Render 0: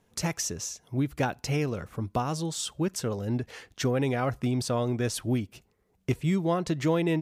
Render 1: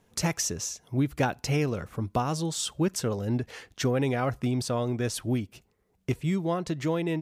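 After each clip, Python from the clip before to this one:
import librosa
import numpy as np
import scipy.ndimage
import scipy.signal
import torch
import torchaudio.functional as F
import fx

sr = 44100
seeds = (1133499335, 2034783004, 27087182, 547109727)

y = fx.rider(x, sr, range_db=10, speed_s=2.0)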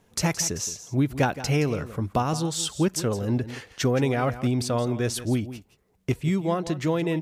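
y = x + 10.0 ** (-14.0 / 20.0) * np.pad(x, (int(170 * sr / 1000.0), 0))[:len(x)]
y = F.gain(torch.from_numpy(y), 3.0).numpy()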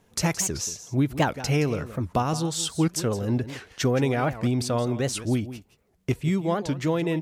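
y = fx.record_warp(x, sr, rpm=78.0, depth_cents=250.0)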